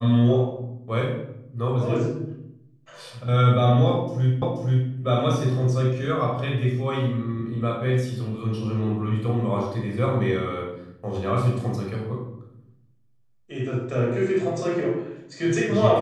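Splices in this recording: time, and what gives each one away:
0:04.42: the same again, the last 0.48 s

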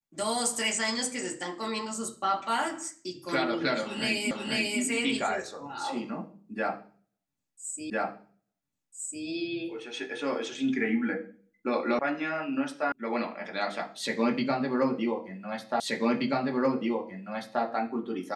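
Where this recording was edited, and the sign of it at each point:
0:04.31: the same again, the last 0.49 s
0:07.90: the same again, the last 1.35 s
0:11.99: cut off before it has died away
0:12.92: cut off before it has died away
0:15.80: the same again, the last 1.83 s

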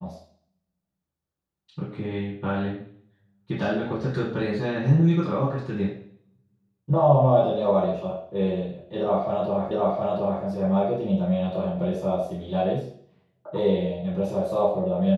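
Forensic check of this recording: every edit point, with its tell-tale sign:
0:09.71: the same again, the last 0.72 s

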